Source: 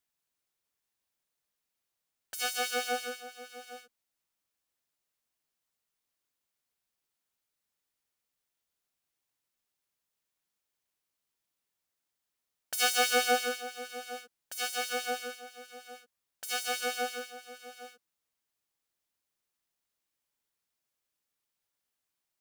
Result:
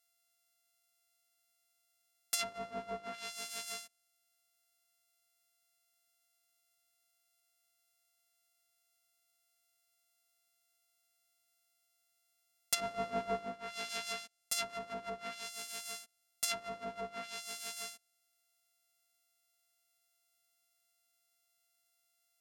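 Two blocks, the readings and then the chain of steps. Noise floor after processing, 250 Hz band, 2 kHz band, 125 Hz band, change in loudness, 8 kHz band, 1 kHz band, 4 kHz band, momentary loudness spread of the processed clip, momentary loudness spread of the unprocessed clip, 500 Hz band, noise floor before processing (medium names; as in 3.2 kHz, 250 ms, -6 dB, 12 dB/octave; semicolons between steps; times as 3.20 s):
-79 dBFS, -2.5 dB, -11.0 dB, no reading, -8.5 dB, -4.0 dB, -7.5 dB, -7.0 dB, 8 LU, 22 LU, -6.0 dB, under -85 dBFS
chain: sorted samples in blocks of 64 samples; low-pass that closes with the level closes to 670 Hz, closed at -29.5 dBFS; pre-emphasis filter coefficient 0.9; trim +13.5 dB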